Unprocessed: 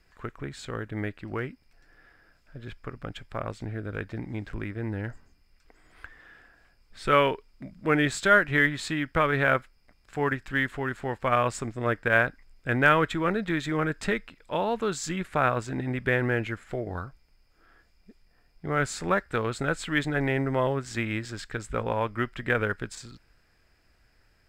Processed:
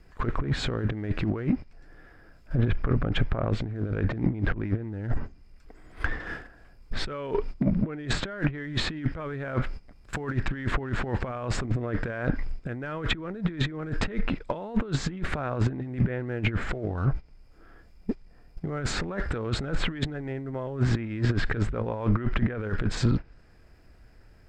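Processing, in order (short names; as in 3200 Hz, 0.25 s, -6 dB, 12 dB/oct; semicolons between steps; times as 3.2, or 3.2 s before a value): G.711 law mismatch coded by mu; in parallel at -9.5 dB: one-sided clip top -15.5 dBFS; on the sum: gate -43 dBFS, range -17 dB; tilt shelf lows +6 dB; limiter -15.5 dBFS, peak gain reduction 10 dB; negative-ratio compressor -31 dBFS, ratio -0.5; treble ducked by the level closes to 2600 Hz, closed at -26 dBFS; gain +5.5 dB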